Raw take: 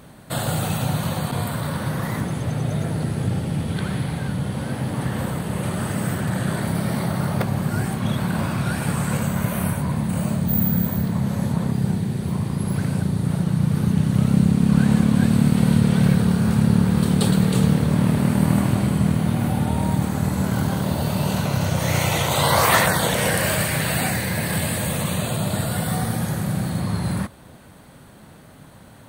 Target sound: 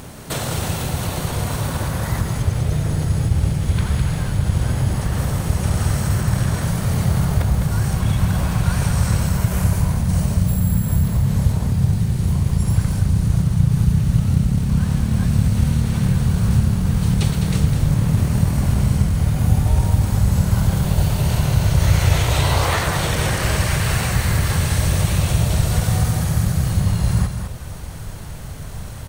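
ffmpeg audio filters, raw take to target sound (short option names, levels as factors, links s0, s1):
-filter_complex "[0:a]acrossover=split=7300[s0][s1];[s1]acompressor=threshold=0.0158:ratio=4:attack=1:release=60[s2];[s0][s2]amix=inputs=2:normalize=0,asplit=2[s3][s4];[s4]acrusher=bits=4:mode=log:mix=0:aa=0.000001,volume=0.282[s5];[s3][s5]amix=inputs=2:normalize=0,highshelf=f=5000:g=6,acompressor=threshold=0.0316:ratio=2.5,asubboost=boost=7.5:cutoff=93,asplit=4[s6][s7][s8][s9];[s7]asetrate=22050,aresample=44100,atempo=2,volume=0.398[s10];[s8]asetrate=29433,aresample=44100,atempo=1.49831,volume=0.631[s11];[s9]asetrate=35002,aresample=44100,atempo=1.25992,volume=0.355[s12];[s6][s10][s11][s12]amix=inputs=4:normalize=0,asplit=2[s13][s14];[s14]aecho=0:1:206:0.447[s15];[s13][s15]amix=inputs=2:normalize=0,volume=1.5"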